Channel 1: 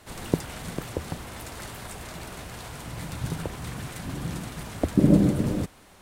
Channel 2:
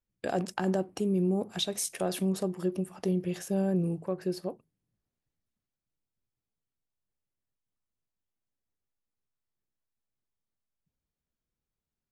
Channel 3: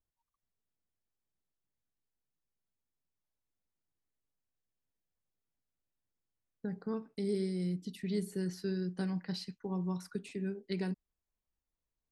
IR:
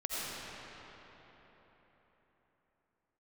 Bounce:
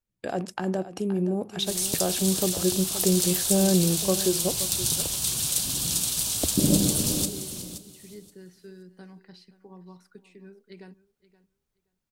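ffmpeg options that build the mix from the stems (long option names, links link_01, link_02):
-filter_complex "[0:a]aexciter=amount=13.3:drive=4.6:freq=3000,adelay=1600,volume=-11dB,asplit=2[link_01][link_02];[link_02]volume=-13.5dB[link_03];[1:a]volume=0.5dB,asplit=2[link_04][link_05];[link_05]volume=-14dB[link_06];[2:a]bass=frequency=250:gain=-7,treble=frequency=4000:gain=-5,volume=-14.5dB,asplit=2[link_07][link_08];[link_08]volume=-17.5dB[link_09];[link_03][link_06][link_09]amix=inputs=3:normalize=0,aecho=0:1:524|1048|1572:1|0.16|0.0256[link_10];[link_01][link_04][link_07][link_10]amix=inputs=4:normalize=0,dynaudnorm=framelen=670:gausssize=7:maxgain=7.5dB"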